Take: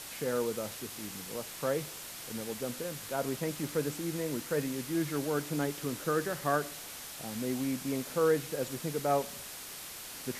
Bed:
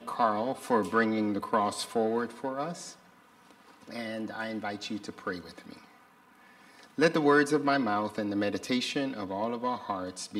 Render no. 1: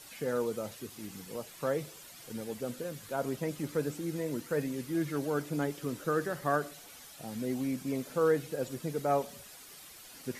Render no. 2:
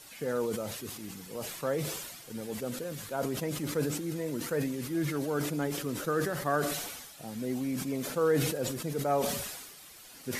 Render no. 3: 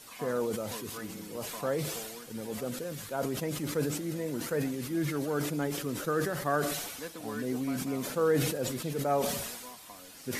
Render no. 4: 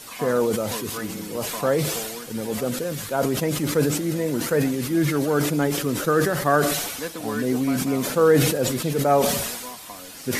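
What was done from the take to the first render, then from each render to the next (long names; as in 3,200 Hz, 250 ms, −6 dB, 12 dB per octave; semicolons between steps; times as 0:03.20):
broadband denoise 10 dB, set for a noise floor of −45 dBFS
level that may fall only so fast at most 43 dB per second
mix in bed −18 dB
level +10 dB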